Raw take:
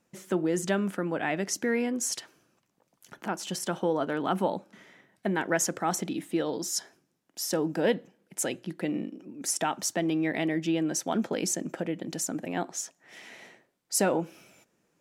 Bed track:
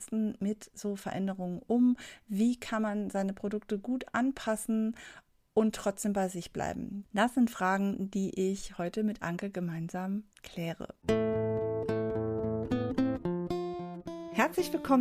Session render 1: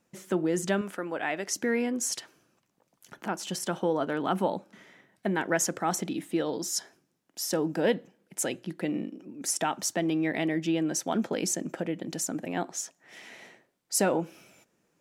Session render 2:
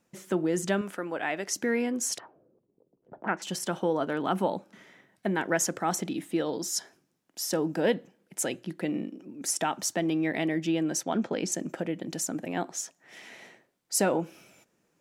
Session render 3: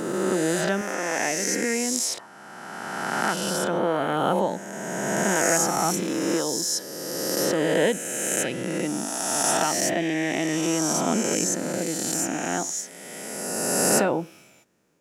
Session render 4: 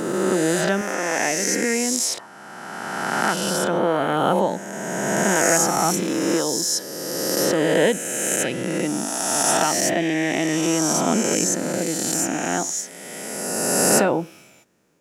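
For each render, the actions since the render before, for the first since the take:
0.81–1.56 bell 170 Hz -10.5 dB 1.6 oct
2.18–3.42 envelope low-pass 390–2000 Hz up, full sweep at -36.5 dBFS; 11.03–11.52 air absorption 70 m
spectral swells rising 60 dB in 2.37 s
gain +3.5 dB; limiter -3 dBFS, peak gain reduction 2.5 dB

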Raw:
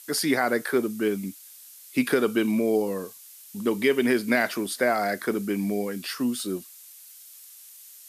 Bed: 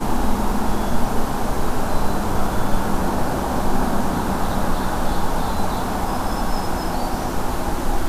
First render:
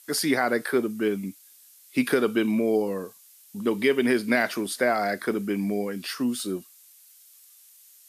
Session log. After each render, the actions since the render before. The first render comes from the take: noise print and reduce 6 dB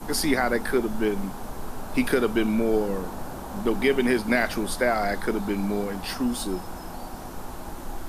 add bed -14 dB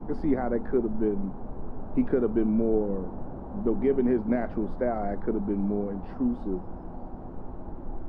Bessel low-pass 510 Hz, order 2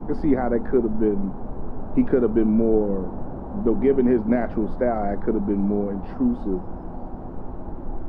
gain +5.5 dB

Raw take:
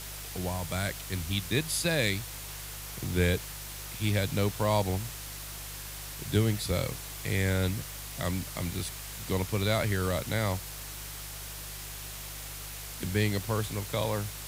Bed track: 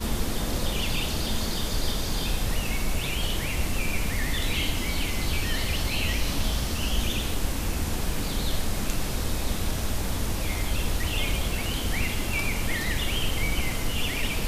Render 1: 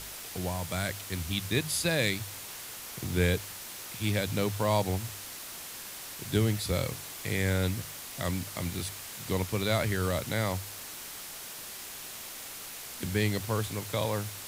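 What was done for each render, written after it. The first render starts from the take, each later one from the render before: de-hum 50 Hz, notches 3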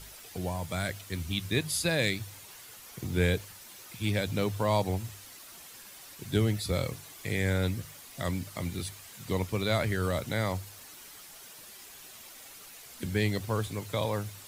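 denoiser 9 dB, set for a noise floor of -43 dBFS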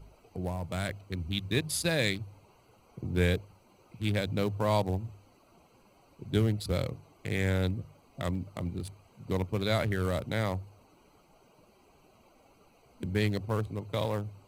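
Wiener smoothing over 25 samples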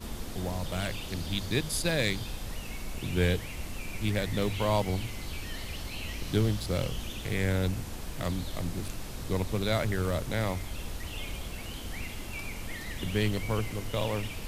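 add bed track -11 dB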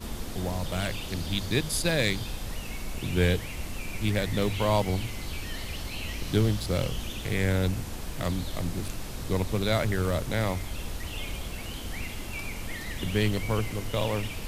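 gain +2.5 dB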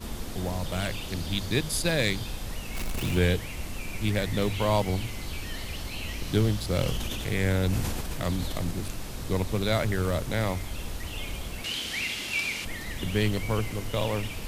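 2.75–3.19 zero-crossing step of -31 dBFS; 6.69–8.71 sustainer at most 22 dB/s; 11.64–12.65 weighting filter D

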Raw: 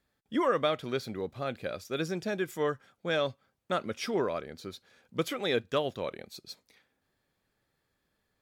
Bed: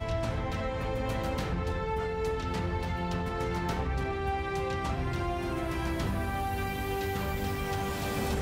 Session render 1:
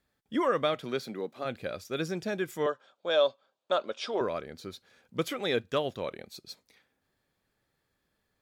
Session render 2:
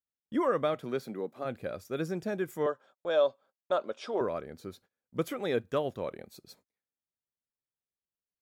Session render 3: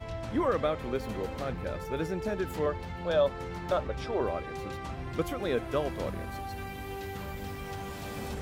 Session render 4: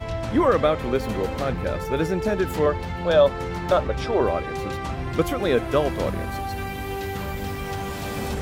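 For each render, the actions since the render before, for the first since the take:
0.74–1.44 HPF 110 Hz -> 230 Hz 24 dB/oct; 2.66–4.21 speaker cabinet 390–7200 Hz, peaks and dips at 590 Hz +8 dB, 1000 Hz +4 dB, 2000 Hz -9 dB, 3600 Hz +6 dB, 5800 Hz -4 dB
gate -54 dBFS, range -27 dB; bell 3800 Hz -9.5 dB 2 oct
add bed -6.5 dB
gain +9 dB

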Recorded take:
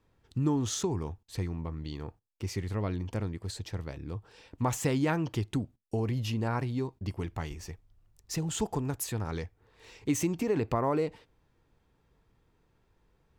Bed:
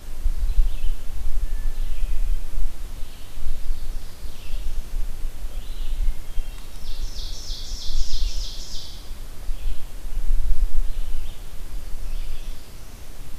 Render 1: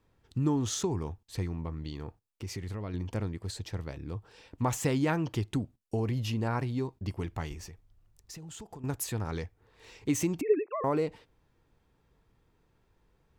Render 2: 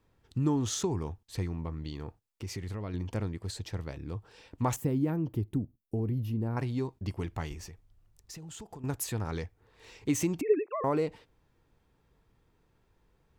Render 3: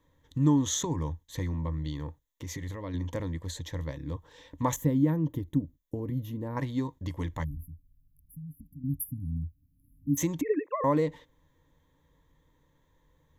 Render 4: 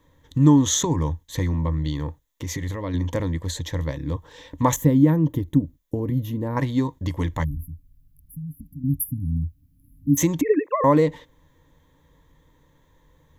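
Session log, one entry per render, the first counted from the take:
1.89–2.94 compressor 3:1, threshold -34 dBFS; 7.67–8.84 compressor 5:1, threshold -43 dBFS; 10.41–10.84 sine-wave speech
4.76–6.57 EQ curve 320 Hz 0 dB, 630 Hz -8 dB, 1500 Hz -14 dB, 7100 Hz -19 dB, 14000 Hz +2 dB
7.44–10.18 spectral delete 300–9900 Hz; ripple EQ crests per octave 1.1, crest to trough 12 dB
gain +8.5 dB

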